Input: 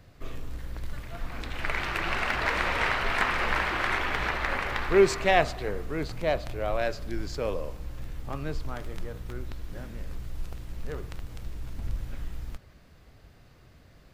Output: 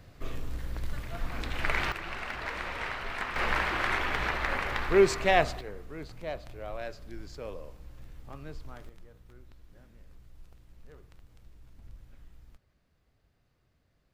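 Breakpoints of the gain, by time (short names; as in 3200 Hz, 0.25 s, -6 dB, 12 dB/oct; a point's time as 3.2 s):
+1 dB
from 1.92 s -9 dB
from 3.36 s -1.5 dB
from 5.61 s -10 dB
from 8.89 s -17 dB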